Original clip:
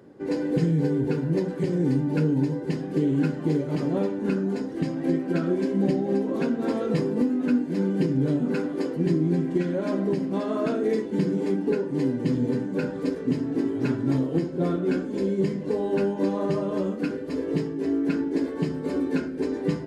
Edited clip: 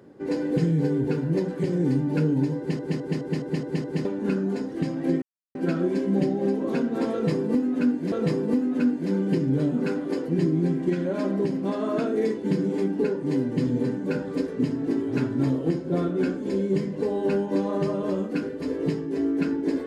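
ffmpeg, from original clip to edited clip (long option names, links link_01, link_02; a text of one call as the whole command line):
ffmpeg -i in.wav -filter_complex "[0:a]asplit=10[link_01][link_02][link_03][link_04][link_05][link_06][link_07][link_08][link_09][link_10];[link_01]atrim=end=2.792[link_11];[link_02]atrim=start=2.578:end=2.792[link_12];[link_03]atrim=start=2.578:end=2.792[link_13];[link_04]atrim=start=2.578:end=2.792[link_14];[link_05]atrim=start=2.578:end=2.792[link_15];[link_06]atrim=start=2.578:end=2.792[link_16];[link_07]atrim=start=2.578:end=2.792[link_17];[link_08]atrim=start=4.048:end=5.22,asetpts=PTS-STARTPTS,afade=type=out:start_time=1.168:duration=0.004:curve=hsin,apad=pad_dur=0.33[link_18];[link_09]atrim=start=5.22:end=7.792,asetpts=PTS-STARTPTS,afade=type=in:duration=0.004:curve=hsin[link_19];[link_10]atrim=start=6.798[link_20];[link_11][link_12]acrossfade=duration=0.004:curve1=hsin:curve2=hsin[link_21];[link_21][link_13]acrossfade=duration=0.004:curve1=hsin:curve2=hsin[link_22];[link_22][link_14]acrossfade=duration=0.004:curve1=hsin:curve2=hsin[link_23];[link_23][link_15]acrossfade=duration=0.004:curve1=hsin:curve2=hsin[link_24];[link_24][link_16]acrossfade=duration=0.004:curve1=hsin:curve2=hsin[link_25];[link_25][link_17]acrossfade=duration=0.004:curve1=hsin:curve2=hsin[link_26];[link_18][link_19]concat=n=2:v=0:a=1[link_27];[link_26][link_27]acrossfade=duration=0.004:curve1=hsin:curve2=hsin[link_28];[link_28][link_20]acrossfade=duration=0.004:curve1=hsin:curve2=hsin" out.wav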